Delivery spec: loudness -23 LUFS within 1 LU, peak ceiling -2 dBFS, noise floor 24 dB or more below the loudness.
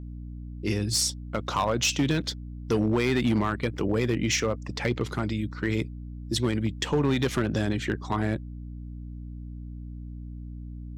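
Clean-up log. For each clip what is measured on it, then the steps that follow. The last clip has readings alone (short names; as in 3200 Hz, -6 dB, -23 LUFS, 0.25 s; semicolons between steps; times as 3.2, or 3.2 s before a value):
clipped 0.9%; flat tops at -17.5 dBFS; hum 60 Hz; harmonics up to 300 Hz; hum level -36 dBFS; loudness -27.0 LUFS; peak -17.5 dBFS; loudness target -23.0 LUFS
-> clip repair -17.5 dBFS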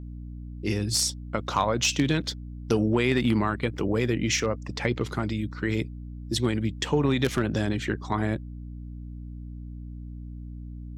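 clipped 0.0%; hum 60 Hz; harmonics up to 300 Hz; hum level -35 dBFS
-> notches 60/120/180/240/300 Hz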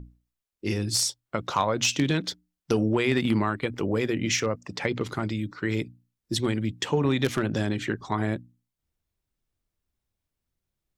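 hum none; loudness -27.0 LUFS; peak -8.5 dBFS; loudness target -23.0 LUFS
-> gain +4 dB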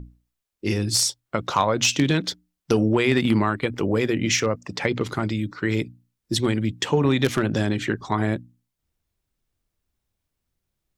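loudness -23.0 LUFS; peak -4.5 dBFS; noise floor -81 dBFS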